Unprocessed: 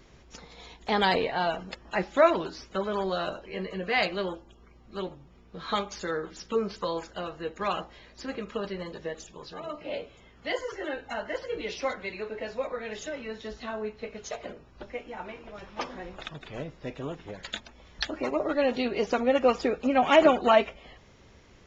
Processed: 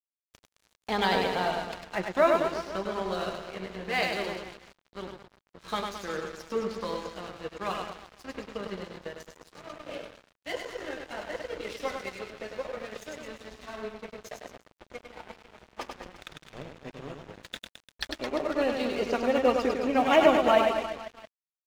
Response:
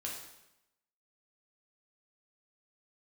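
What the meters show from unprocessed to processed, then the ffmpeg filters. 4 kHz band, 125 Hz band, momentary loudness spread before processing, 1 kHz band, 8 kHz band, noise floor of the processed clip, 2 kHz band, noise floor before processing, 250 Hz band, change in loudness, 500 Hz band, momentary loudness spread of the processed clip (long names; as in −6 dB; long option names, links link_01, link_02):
−1.0 dB, −2.0 dB, 18 LU, −1.0 dB, can't be measured, below −85 dBFS, −1.0 dB, −55 dBFS, −1.0 dB, 0.0 dB, −1.0 dB, 21 LU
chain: -af "lowshelf=frequency=89:gain=3,aecho=1:1:100|215|347.2|499.3|674.2:0.631|0.398|0.251|0.158|0.1,aeval=exprs='sgn(val(0))*max(abs(val(0))-0.0126,0)':channel_layout=same,volume=-2dB"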